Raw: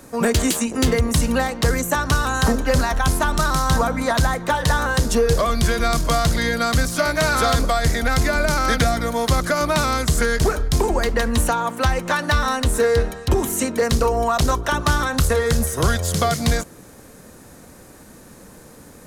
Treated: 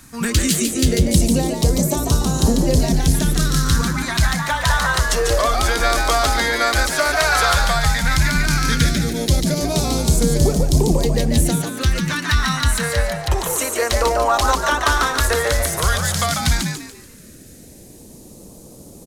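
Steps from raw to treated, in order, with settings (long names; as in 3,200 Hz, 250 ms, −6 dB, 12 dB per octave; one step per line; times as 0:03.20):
echo with shifted repeats 144 ms, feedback 36%, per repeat +110 Hz, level −4.5 dB
all-pass phaser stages 2, 0.12 Hz, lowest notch 150–1,600 Hz
level +2 dB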